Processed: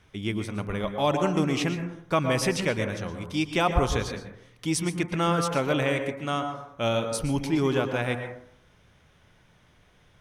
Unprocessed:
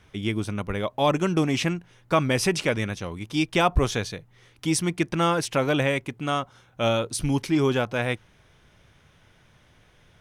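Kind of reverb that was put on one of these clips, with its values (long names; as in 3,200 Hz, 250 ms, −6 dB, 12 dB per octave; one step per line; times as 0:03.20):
dense smooth reverb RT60 0.7 s, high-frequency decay 0.25×, pre-delay 105 ms, DRR 6 dB
level −3 dB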